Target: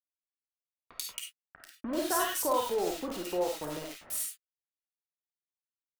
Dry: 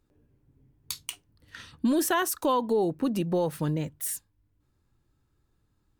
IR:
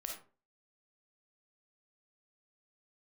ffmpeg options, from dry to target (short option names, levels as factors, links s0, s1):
-filter_complex "[0:a]highpass=410,acrusher=bits=5:mix=0:aa=0.000001,acrossover=split=1700[s0][s1];[s1]adelay=90[s2];[s0][s2]amix=inputs=2:normalize=0[s3];[1:a]atrim=start_sample=2205,afade=t=out:st=0.16:d=0.01,atrim=end_sample=7497[s4];[s3][s4]afir=irnorm=-1:irlink=0"